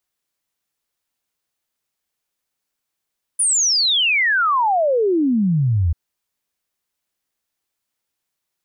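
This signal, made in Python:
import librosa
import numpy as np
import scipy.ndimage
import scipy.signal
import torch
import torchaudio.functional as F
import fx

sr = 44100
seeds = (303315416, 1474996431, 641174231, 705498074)

y = fx.ess(sr, length_s=2.54, from_hz=10000.0, to_hz=77.0, level_db=-14.0)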